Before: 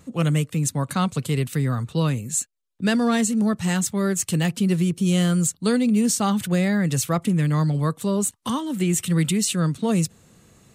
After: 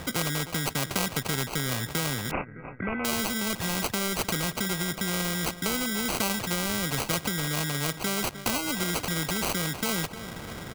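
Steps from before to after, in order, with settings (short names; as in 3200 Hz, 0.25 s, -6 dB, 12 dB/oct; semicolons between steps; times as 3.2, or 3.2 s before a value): low shelf 480 Hz +8.5 dB; compressor 3:1, threshold -28 dBFS, peak gain reduction 13.5 dB; feedback echo 0.306 s, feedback 55%, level -22 dB; sample-and-hold 25×; 2.31–3.05 Chebyshev low-pass 2600 Hz, order 8; spectral compressor 2:1; gain +8.5 dB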